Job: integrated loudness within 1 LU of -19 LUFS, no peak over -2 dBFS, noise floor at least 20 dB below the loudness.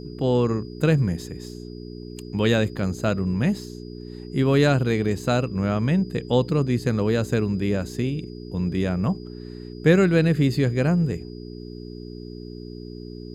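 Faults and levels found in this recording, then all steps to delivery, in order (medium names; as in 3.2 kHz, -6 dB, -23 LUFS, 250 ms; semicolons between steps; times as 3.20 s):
hum 60 Hz; highest harmonic 420 Hz; hum level -34 dBFS; steady tone 4.9 kHz; tone level -51 dBFS; loudness -23.0 LUFS; peak level -4.0 dBFS; loudness target -19.0 LUFS
-> de-hum 60 Hz, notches 7; band-stop 4.9 kHz, Q 30; trim +4 dB; peak limiter -2 dBFS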